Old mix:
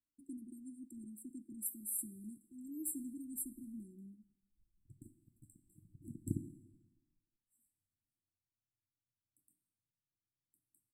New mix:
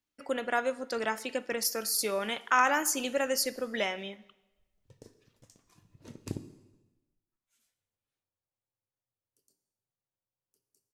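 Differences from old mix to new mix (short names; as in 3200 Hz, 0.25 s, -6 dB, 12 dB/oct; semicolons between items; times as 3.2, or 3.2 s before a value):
speech +7.0 dB; master: remove brick-wall FIR band-stop 360–7500 Hz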